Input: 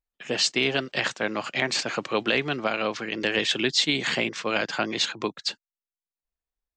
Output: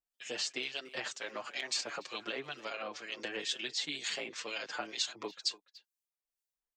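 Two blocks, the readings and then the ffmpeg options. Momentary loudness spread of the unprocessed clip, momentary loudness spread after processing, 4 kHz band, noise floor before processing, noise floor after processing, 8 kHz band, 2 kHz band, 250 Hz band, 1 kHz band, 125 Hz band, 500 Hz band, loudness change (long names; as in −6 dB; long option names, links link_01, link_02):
7 LU, 6 LU, −10.5 dB, below −85 dBFS, below −85 dBFS, −7.5 dB, −13.5 dB, −18.5 dB, −13.0 dB, −23.5 dB, −15.0 dB, −12.0 dB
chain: -filter_complex "[0:a]acrossover=split=2200[link_01][link_02];[link_01]aeval=exprs='val(0)*(1-0.7/2+0.7/2*cos(2*PI*2.1*n/s))':channel_layout=same[link_03];[link_02]aeval=exprs='val(0)*(1-0.7/2-0.7/2*cos(2*PI*2.1*n/s))':channel_layout=same[link_04];[link_03][link_04]amix=inputs=2:normalize=0,acompressor=threshold=-35dB:ratio=3,bass=frequency=250:gain=-12,treble=frequency=4000:gain=8,asplit=2[link_05][link_06];[link_06]adelay=290,highpass=300,lowpass=3400,asoftclip=type=hard:threshold=-27dB,volume=-16dB[link_07];[link_05][link_07]amix=inputs=2:normalize=0,asplit=2[link_08][link_09];[link_09]adelay=6.4,afreqshift=-2.7[link_10];[link_08][link_10]amix=inputs=2:normalize=1"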